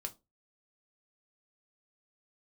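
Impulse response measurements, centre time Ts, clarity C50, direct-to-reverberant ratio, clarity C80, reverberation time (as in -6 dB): 5 ms, 20.0 dB, 4.5 dB, 28.0 dB, 0.25 s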